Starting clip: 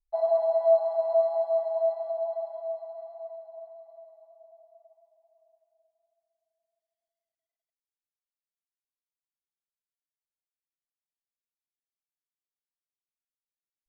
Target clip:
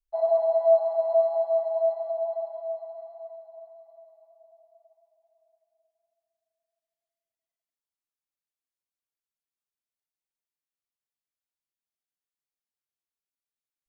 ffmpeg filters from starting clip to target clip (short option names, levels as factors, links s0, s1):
-af "adynamicequalizer=threshold=0.0158:dfrequency=520:dqfactor=0.95:tfrequency=520:tqfactor=0.95:attack=5:release=100:ratio=0.375:range=2.5:mode=boostabove:tftype=bell,volume=0.75"